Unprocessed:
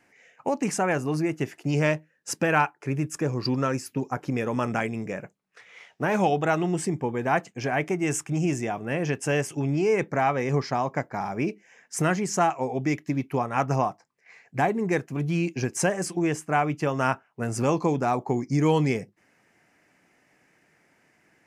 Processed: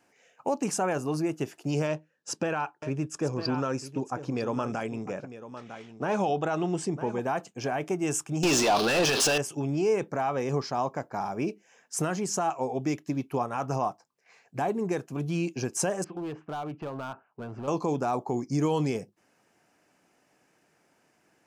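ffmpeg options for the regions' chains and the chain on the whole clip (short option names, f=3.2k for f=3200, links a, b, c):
-filter_complex "[0:a]asettb=1/sr,asplit=3[a][b][c];[a]atrim=end=1.874[d];[b]atrim=start=1.87:end=7.2,asetpts=PTS-STARTPTS,afade=t=in:d=0.004:c=qsin,afade=t=out:st=5.326:d=0.004:c=qsin,lowpass=6.9k,aecho=1:1:952:0.211,atrim=end_sample=235053[e];[c]atrim=start=7.196[f];[d][e]acrossfade=d=0.004:c1=hsin:c2=qsin[g];[g][f]acrossfade=d=0.004:c1=qsin:c2=hsin,asettb=1/sr,asplit=3[h][i][j];[h]atrim=end=8.434[k];[i]atrim=start=8.43:end=9.38,asetpts=PTS-STARTPTS,afade=t=in:d=0.004:c=qsin,afade=t=out:st=0.946:d=0.004:c=qsin,aeval=exprs='val(0)+0.5*0.0251*sgn(val(0))':c=same,equalizer=f=4.3k:t=o:w=1.5:g=13.5,asplit=2[l][m];[m]highpass=f=720:p=1,volume=26dB,asoftclip=type=tanh:threshold=-9.5dB[n];[l][n]amix=inputs=2:normalize=0,lowpass=f=3.4k:p=1,volume=-6dB[o];[j]atrim=start=9.376[p];[k][o]acrossfade=d=0.004:c1=hsin:c2=qsin[q];[q][p]acrossfade=d=0.004:c1=qsin:c2=hsin,asettb=1/sr,asplit=3[r][s][t];[r]atrim=end=16.044[u];[s]atrim=start=16.04:end=17.68,asetpts=PTS-STARTPTS,afade=t=in:d=0.004:c=qsin,afade=t=out:st=1.636:d=0.004:c=qsin,acompressor=threshold=-30dB:ratio=2.5:attack=3.2:release=140:knee=1:detection=peak,lowpass=f=2.5k:w=0.5412,lowpass=f=2.5k:w=1.3066,volume=28.5dB,asoftclip=hard,volume=-28.5dB[v];[t]atrim=start=17.676[w];[u][v]acrossfade=d=0.004:c1=hsin:c2=qsin[x];[x][w]acrossfade=d=0.004:c1=qsin:c2=hsin,lowshelf=f=240:g=-6.5,alimiter=limit=-16.5dB:level=0:latency=1:release=39,equalizer=f=2k:w=2.5:g=-11"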